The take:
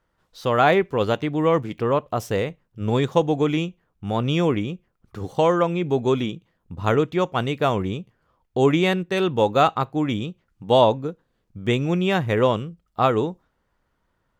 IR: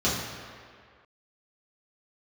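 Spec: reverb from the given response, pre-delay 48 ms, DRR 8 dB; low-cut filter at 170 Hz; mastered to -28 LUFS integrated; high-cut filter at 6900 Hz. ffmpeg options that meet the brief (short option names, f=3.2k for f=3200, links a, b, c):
-filter_complex "[0:a]highpass=170,lowpass=6.9k,asplit=2[a][b];[1:a]atrim=start_sample=2205,adelay=48[c];[b][c]afir=irnorm=-1:irlink=0,volume=-21.5dB[d];[a][d]amix=inputs=2:normalize=0,volume=-6.5dB"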